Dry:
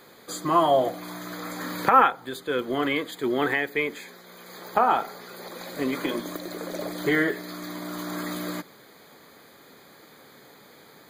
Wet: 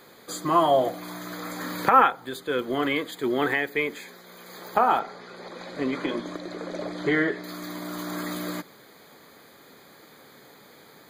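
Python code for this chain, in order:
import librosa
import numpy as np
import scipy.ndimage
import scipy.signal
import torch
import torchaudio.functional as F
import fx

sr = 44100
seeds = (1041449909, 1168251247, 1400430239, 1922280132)

y = fx.air_absorb(x, sr, metres=98.0, at=(4.99, 7.44))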